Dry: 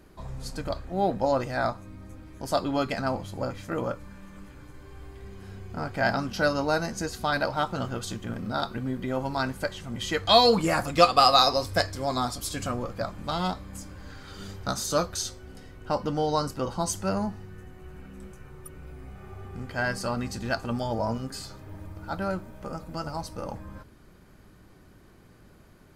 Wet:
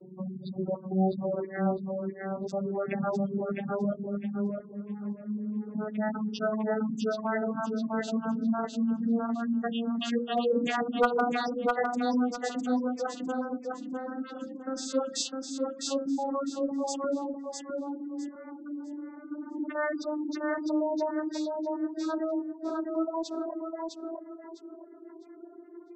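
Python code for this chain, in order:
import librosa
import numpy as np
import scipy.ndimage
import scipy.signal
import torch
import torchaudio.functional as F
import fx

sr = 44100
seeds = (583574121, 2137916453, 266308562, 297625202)

p1 = fx.vocoder_glide(x, sr, note=54, semitones=11)
p2 = fx.hum_notches(p1, sr, base_hz=60, count=9)
p3 = fx.dereverb_blind(p2, sr, rt60_s=1.2)
p4 = fx.spec_gate(p3, sr, threshold_db=-15, keep='strong')
p5 = fx.over_compress(p4, sr, threshold_db=-41.0, ratio=-1.0)
p6 = p4 + (p5 * librosa.db_to_amplitude(2.0))
p7 = np.clip(p6, -10.0 ** (-13.0 / 20.0), 10.0 ** (-13.0 / 20.0))
p8 = fx.rotary(p7, sr, hz=0.9)
y = p8 + fx.echo_feedback(p8, sr, ms=655, feedback_pct=25, wet_db=-3.5, dry=0)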